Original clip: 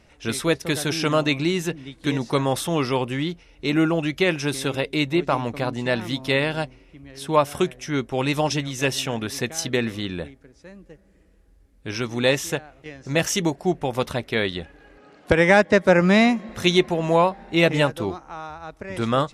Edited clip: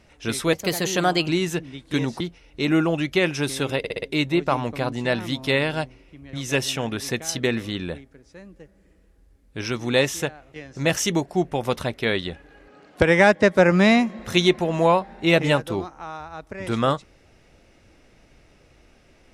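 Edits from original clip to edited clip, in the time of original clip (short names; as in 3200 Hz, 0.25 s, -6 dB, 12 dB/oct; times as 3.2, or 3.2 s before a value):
0.53–1.41 speed 117%
2.33–3.25 cut
4.83 stutter 0.06 s, 5 plays
7.14–8.63 cut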